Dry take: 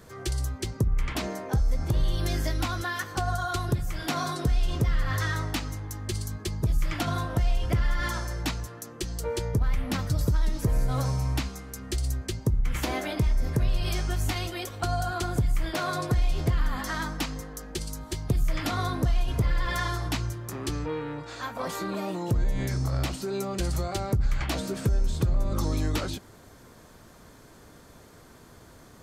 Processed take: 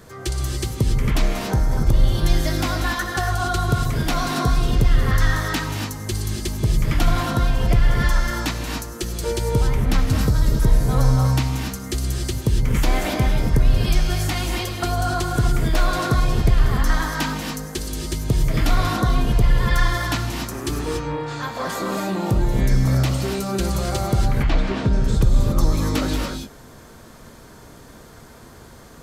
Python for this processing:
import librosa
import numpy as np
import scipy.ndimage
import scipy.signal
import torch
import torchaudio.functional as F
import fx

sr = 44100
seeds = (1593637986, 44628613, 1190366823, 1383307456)

y = fx.lowpass(x, sr, hz=3400.0, slope=12, at=(24.28, 24.93))
y = fx.rev_gated(y, sr, seeds[0], gate_ms=310, shape='rising', drr_db=1.5)
y = y * 10.0 ** (5.0 / 20.0)